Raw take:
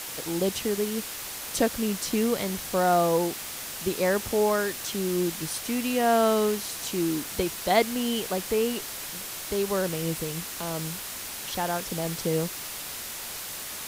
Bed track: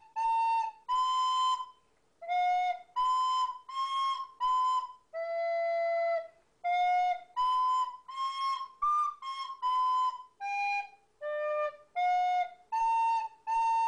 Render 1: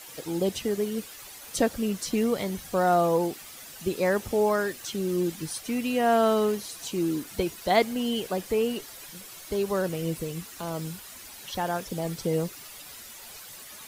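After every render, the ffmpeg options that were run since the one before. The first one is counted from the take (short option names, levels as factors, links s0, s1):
-af "afftdn=nr=11:nf=-37"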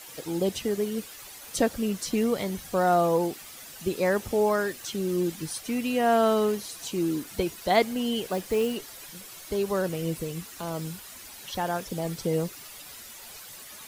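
-filter_complex "[0:a]asettb=1/sr,asplit=3[s0][s1][s2];[s0]atrim=end=8.274[s3];[s1]atrim=start=8.27:end=8.75,asetpts=PTS-STARTPTS,afade=t=in:d=0.004:c=qsin,afade=t=out:st=0.476:d=0.004:c=qsin,acrusher=bits=5:mode=log:mix=0:aa=0.000001[s4];[s2]atrim=start=8.746[s5];[s3][s4]acrossfade=d=0.004:c1=hsin:c2=qsin[s6];[s6][s5]acrossfade=d=0.004:c1=qsin:c2=hsin"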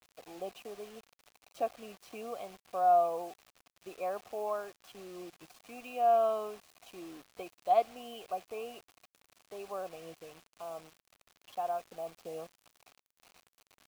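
-filter_complex "[0:a]asplit=3[s0][s1][s2];[s0]bandpass=f=730:t=q:w=8,volume=1[s3];[s1]bandpass=f=1090:t=q:w=8,volume=0.501[s4];[s2]bandpass=f=2440:t=q:w=8,volume=0.355[s5];[s3][s4][s5]amix=inputs=3:normalize=0,acrusher=bits=8:mix=0:aa=0.000001"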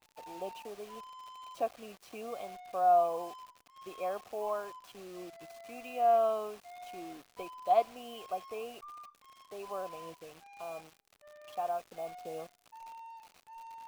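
-filter_complex "[1:a]volume=0.0944[s0];[0:a][s0]amix=inputs=2:normalize=0"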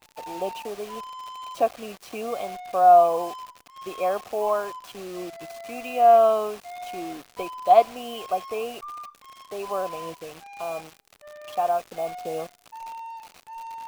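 -af "volume=3.55"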